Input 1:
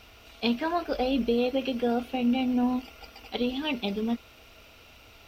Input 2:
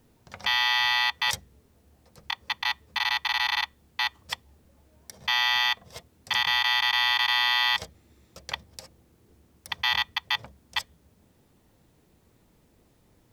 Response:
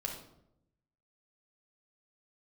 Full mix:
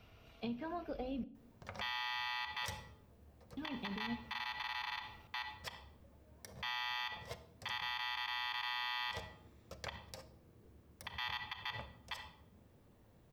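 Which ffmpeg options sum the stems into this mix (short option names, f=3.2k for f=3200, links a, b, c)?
-filter_complex "[0:a]equalizer=f=140:w=1.4:g=12.5,acrossover=split=120[a][b];[b]acompressor=threshold=-29dB:ratio=6[c];[a][c]amix=inputs=2:normalize=0,volume=-11dB,asplit=3[d][e][f];[d]atrim=end=1.24,asetpts=PTS-STARTPTS,afade=t=out:st=1.236:d=0.004:c=hsin[g];[e]atrim=start=1.24:end=3.57,asetpts=PTS-STARTPTS,volume=0[h];[f]atrim=start=3.57,asetpts=PTS-STARTPTS,afade=t=in:d=0.004:c=hsin[i];[g][h][i]concat=n=3:v=0:a=1,asplit=2[j][k];[k]volume=-12.5dB[l];[1:a]adelay=1350,volume=-5.5dB,asplit=2[m][n];[n]volume=-6.5dB[o];[2:a]atrim=start_sample=2205[p];[l][o]amix=inputs=2:normalize=0[q];[q][p]afir=irnorm=-1:irlink=0[r];[j][m][r]amix=inputs=3:normalize=0,equalizer=f=8.4k:w=0.34:g=-8.5,alimiter=level_in=6dB:limit=-24dB:level=0:latency=1:release=61,volume=-6dB"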